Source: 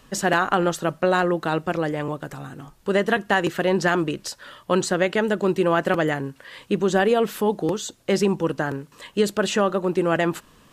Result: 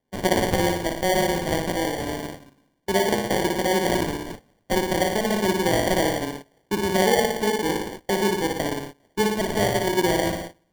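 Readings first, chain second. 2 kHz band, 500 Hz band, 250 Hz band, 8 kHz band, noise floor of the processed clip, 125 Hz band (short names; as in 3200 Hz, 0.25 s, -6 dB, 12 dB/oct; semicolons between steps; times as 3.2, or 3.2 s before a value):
-2.0 dB, -1.5 dB, -1.0 dB, +3.0 dB, -67 dBFS, -1.0 dB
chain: rattling part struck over -30 dBFS, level -23 dBFS; HPF 180 Hz 24 dB/oct; flutter echo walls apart 9.9 m, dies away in 0.89 s; gate -31 dBFS, range -21 dB; treble ducked by the level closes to 1300 Hz, closed at -13.5 dBFS; sample-and-hold 34×; gain -2.5 dB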